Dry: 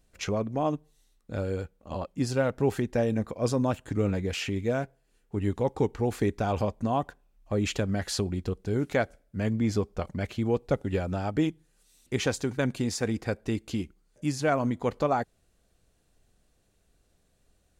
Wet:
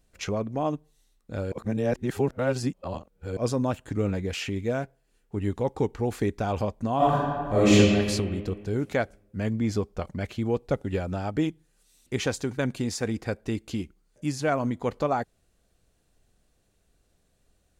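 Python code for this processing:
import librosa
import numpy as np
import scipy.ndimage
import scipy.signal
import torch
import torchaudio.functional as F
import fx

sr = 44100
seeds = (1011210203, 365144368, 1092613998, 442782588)

y = fx.reverb_throw(x, sr, start_s=6.96, length_s=0.79, rt60_s=1.9, drr_db=-11.0)
y = fx.edit(y, sr, fx.reverse_span(start_s=1.52, length_s=1.85), tone=tone)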